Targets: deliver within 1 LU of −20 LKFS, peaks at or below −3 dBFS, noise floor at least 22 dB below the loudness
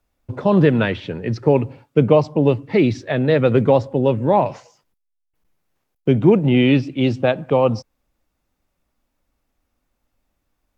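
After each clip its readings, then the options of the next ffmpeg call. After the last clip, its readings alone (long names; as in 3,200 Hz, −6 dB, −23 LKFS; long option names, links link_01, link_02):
integrated loudness −17.5 LKFS; sample peak −1.5 dBFS; target loudness −20.0 LKFS
→ -af "volume=-2.5dB"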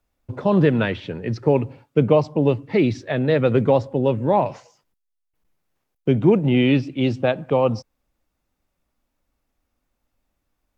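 integrated loudness −20.0 LKFS; sample peak −4.0 dBFS; background noise floor −76 dBFS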